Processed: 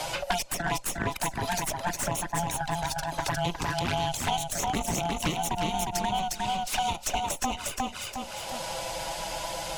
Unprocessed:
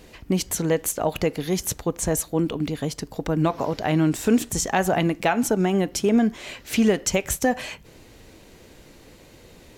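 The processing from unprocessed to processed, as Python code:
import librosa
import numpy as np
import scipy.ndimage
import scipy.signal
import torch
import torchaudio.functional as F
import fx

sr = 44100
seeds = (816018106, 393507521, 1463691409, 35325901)

p1 = fx.band_swap(x, sr, width_hz=500)
p2 = scipy.signal.sosfilt(scipy.signal.butter(4, 12000.0, 'lowpass', fs=sr, output='sos'), p1)
p3 = fx.high_shelf(p2, sr, hz=2600.0, db=7.0)
p4 = fx.cheby_harmonics(p3, sr, harmonics=(3, 8), levels_db=(-16, -21), full_scale_db=-4.5)
p5 = fx.env_flanger(p4, sr, rest_ms=6.8, full_db=-20.0)
p6 = p5 + fx.echo_feedback(p5, sr, ms=357, feedback_pct=18, wet_db=-4.0, dry=0)
p7 = fx.band_squash(p6, sr, depth_pct=100)
y = p7 * 10.0 ** (-3.5 / 20.0)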